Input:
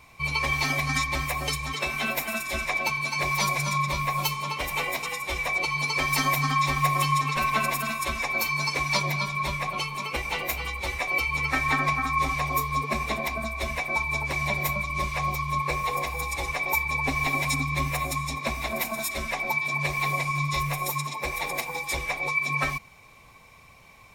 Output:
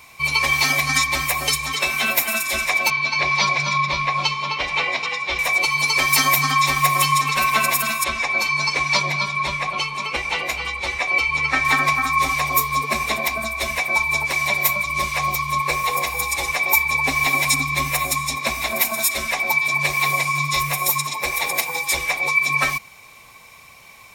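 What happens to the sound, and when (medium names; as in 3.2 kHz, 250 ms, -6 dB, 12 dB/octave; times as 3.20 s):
2.90–5.39 s: low-pass 4.9 kHz 24 dB/octave
8.04–11.65 s: distance through air 82 m
14.25–14.86 s: bass shelf 210 Hz -6 dB
whole clip: tilt EQ +2 dB/octave; trim +5.5 dB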